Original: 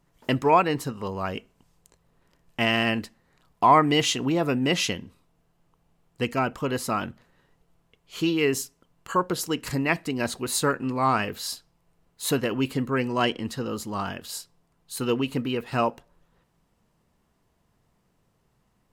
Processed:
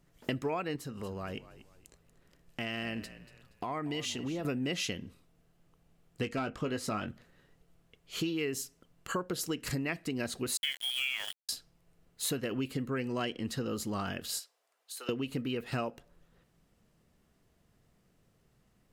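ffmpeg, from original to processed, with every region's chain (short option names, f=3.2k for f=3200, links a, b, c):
-filter_complex "[0:a]asettb=1/sr,asplit=3[a][b][c];[a]atrim=end=0.764[d];[b]atrim=start=0.76:end=4.45,asetpts=PTS-STARTPTS,afade=t=in:d=0.004:c=qsin,afade=t=out:st=3.686:d=0.004:c=qsin,acompressor=threshold=-40dB:ratio=2:attack=3.2:release=140:knee=1:detection=peak,asplit=4[e][f][g][h];[f]adelay=236,afreqshift=-50,volume=-16dB[i];[g]adelay=472,afreqshift=-100,volume=-25.4dB[j];[h]adelay=708,afreqshift=-150,volume=-34.7dB[k];[e][i][j][k]amix=inputs=4:normalize=0,atrim=end_sample=162729[l];[c]atrim=start=4.446[m];[d][l]acrossfade=d=0.004:c1=hsin:c2=qsin[n];[n][m]acrossfade=d=0.004:c1=qsin:c2=hsin,asettb=1/sr,asplit=3[o][p][q];[o]atrim=end=6.224[r];[p]atrim=start=6.22:end=7.08,asetpts=PTS-STARTPTS,afade=t=in:d=0.004:c=qsin,afade=t=out:st=0.856:d=0.004:c=qsin,asoftclip=type=hard:threshold=-17dB,adynamicsmooth=sensitivity=7:basefreq=7.6k,asplit=2[s][t];[t]adelay=19,volume=-9dB[u];[s][u]amix=inputs=2:normalize=0,atrim=end_sample=37926[v];[q]atrim=start=7.076[w];[r][v]acrossfade=d=0.004:c1=hsin:c2=qsin[x];[x][w]acrossfade=d=0.004:c1=qsin:c2=hsin,asettb=1/sr,asplit=3[y][z][aa];[y]atrim=end=10.574[ab];[z]atrim=start=10.57:end=11.49,asetpts=PTS-STARTPTS,afade=t=in:d=0.004:c=qsin,afade=t=out:st=0.916:d=0.004:c=qsin,lowpass=f=3k:t=q:w=0.5098,lowpass=f=3k:t=q:w=0.6013,lowpass=f=3k:t=q:w=0.9,lowpass=f=3k:t=q:w=2.563,afreqshift=-3500,aeval=exprs='val(0)*gte(abs(val(0)),0.0316)':c=same[ac];[aa]atrim=start=11.486[ad];[ab][ac]acrossfade=d=0.004:c1=hsin:c2=qsin[ae];[ae][ad]acrossfade=d=0.004:c1=qsin:c2=hsin,asettb=1/sr,asplit=3[af][ag][ah];[af]atrim=end=14.394[ai];[ag]atrim=start=14.39:end=15.09,asetpts=PTS-STARTPTS,afade=t=in:d=0.004:c=qsin,afade=t=out:st=0.696:d=0.004:c=qsin,highpass=f=540:w=0.5412,highpass=f=540:w=1.3066,acompressor=threshold=-39dB:ratio=10:attack=3.2:release=140:knee=1:detection=peak[aj];[ah]atrim=start=15.086[ak];[ai][aj]acrossfade=d=0.004:c1=hsin:c2=qsin[al];[al][ak]acrossfade=d=0.004:c1=qsin:c2=hsin,equalizer=f=950:w=2.7:g=-8,acompressor=threshold=-31dB:ratio=6"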